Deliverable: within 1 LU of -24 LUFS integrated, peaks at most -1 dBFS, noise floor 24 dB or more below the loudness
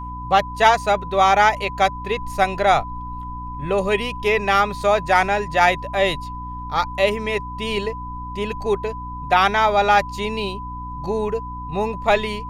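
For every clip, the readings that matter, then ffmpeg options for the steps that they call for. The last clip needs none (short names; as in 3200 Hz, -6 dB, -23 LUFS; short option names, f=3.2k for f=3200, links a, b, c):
hum 60 Hz; harmonics up to 300 Hz; hum level -31 dBFS; steady tone 1000 Hz; tone level -31 dBFS; loudness -20.0 LUFS; peak -1.5 dBFS; loudness target -24.0 LUFS
-> -af "bandreject=f=60:t=h:w=4,bandreject=f=120:t=h:w=4,bandreject=f=180:t=h:w=4,bandreject=f=240:t=h:w=4,bandreject=f=300:t=h:w=4"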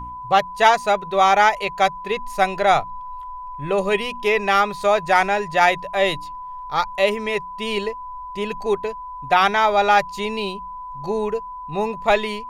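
hum none; steady tone 1000 Hz; tone level -31 dBFS
-> -af "bandreject=f=1k:w=30"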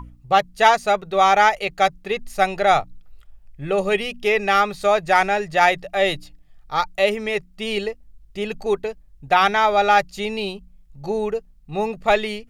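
steady tone none; loudness -20.0 LUFS; peak -2.0 dBFS; loudness target -24.0 LUFS
-> -af "volume=-4dB"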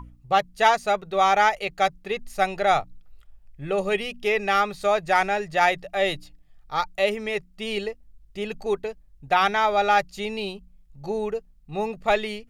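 loudness -24.0 LUFS; peak -6.0 dBFS; noise floor -54 dBFS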